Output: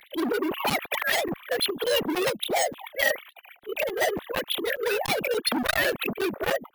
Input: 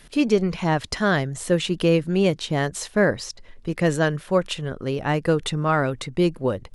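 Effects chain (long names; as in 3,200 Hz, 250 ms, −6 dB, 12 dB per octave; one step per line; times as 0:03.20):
three sine waves on the formant tracks
low-shelf EQ 200 Hz +10.5 dB
in parallel at −1 dB: downward compressor 4 to 1, threshold −24 dBFS, peak gain reduction 15.5 dB
on the sum: volume swells 124 ms
hard clipping −21 dBFS, distortion −7 dB
formants moved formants +3 semitones
bad sample-rate conversion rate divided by 3×, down none, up hold
regular buffer underruns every 0.29 s, samples 256, zero, from 0:00.70
saturating transformer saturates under 1,500 Hz
level +2.5 dB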